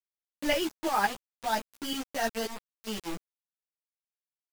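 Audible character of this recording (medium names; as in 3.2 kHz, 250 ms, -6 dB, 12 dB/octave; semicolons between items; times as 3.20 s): tremolo saw up 5.7 Hz, depth 70%; a quantiser's noise floor 6-bit, dither none; a shimmering, thickened sound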